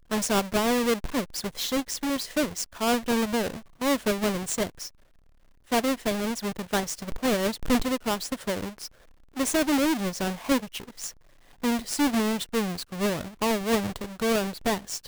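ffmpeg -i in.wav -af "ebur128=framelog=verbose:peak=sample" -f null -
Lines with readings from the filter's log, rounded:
Integrated loudness:
  I:         -27.2 LUFS
  Threshold: -37.7 LUFS
Loudness range:
  LRA:         2.0 LU
  Threshold: -47.9 LUFS
  LRA low:   -28.9 LUFS
  LRA high:  -26.9 LUFS
Sample peak:
  Peak:      -13.7 dBFS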